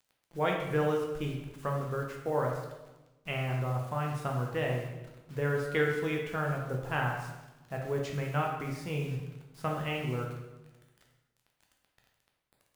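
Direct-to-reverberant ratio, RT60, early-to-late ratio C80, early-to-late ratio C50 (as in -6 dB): -0.5 dB, 1.1 s, 6.0 dB, 3.5 dB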